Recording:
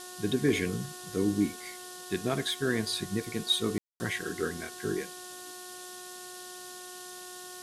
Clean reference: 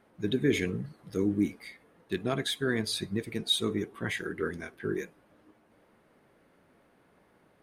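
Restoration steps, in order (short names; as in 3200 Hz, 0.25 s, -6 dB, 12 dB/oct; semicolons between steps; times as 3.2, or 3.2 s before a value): clip repair -15.5 dBFS; de-hum 363 Hz, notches 5; room tone fill 3.78–4; noise print and reduce 20 dB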